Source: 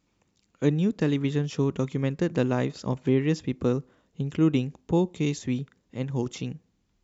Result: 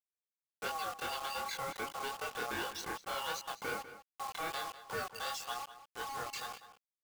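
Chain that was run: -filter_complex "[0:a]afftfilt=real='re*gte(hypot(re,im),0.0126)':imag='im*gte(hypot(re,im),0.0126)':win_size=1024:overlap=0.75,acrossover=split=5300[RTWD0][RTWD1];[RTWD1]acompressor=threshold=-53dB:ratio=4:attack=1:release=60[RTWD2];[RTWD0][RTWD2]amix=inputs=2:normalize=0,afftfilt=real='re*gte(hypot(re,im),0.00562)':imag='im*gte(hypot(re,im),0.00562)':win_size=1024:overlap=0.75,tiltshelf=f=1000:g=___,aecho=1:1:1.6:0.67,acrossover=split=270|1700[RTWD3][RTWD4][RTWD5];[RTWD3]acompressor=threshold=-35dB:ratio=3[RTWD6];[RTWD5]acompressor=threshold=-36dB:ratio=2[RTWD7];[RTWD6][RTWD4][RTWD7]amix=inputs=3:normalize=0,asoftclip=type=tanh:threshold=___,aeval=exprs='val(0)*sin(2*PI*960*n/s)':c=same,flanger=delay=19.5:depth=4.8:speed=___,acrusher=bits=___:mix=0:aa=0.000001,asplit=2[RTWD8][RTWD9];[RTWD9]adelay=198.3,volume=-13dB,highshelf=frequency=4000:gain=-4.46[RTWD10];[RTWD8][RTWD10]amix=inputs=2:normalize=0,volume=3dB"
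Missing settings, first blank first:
-9, -30.5dB, 2.6, 7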